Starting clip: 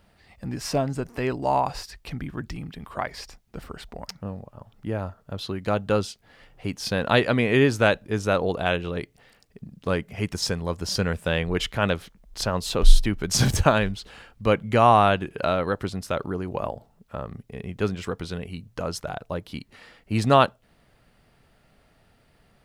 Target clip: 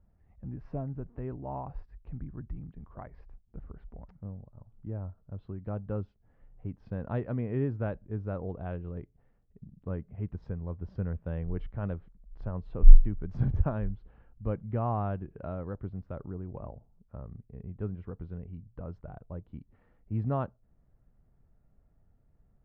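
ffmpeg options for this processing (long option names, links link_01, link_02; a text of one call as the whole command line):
ffmpeg -i in.wav -af "lowpass=1400,aemphasis=mode=reproduction:type=riaa,volume=-17.5dB" out.wav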